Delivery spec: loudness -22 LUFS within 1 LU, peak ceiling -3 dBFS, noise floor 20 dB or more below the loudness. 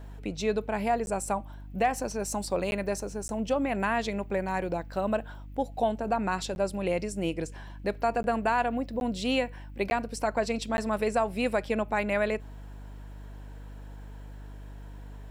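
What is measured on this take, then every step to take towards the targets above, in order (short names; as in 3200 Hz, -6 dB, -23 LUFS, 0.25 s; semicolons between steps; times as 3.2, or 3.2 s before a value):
dropouts 8; longest dropout 11 ms; hum 50 Hz; harmonics up to 300 Hz; hum level -41 dBFS; loudness -30.0 LUFS; peak -15.0 dBFS; loudness target -22.0 LUFS
-> interpolate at 1.06/2.71/3.28/6.55/8.23/9/9.9/10.77, 11 ms; de-hum 50 Hz, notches 6; gain +8 dB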